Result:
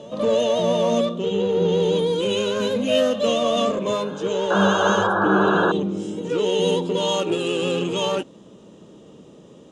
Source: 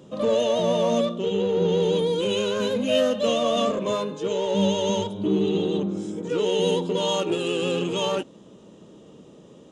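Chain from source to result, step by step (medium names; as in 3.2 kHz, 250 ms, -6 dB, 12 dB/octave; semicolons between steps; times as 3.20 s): painted sound noise, 4.50–5.72 s, 320–1700 Hz -23 dBFS; reverse echo 465 ms -21 dB; trim +2 dB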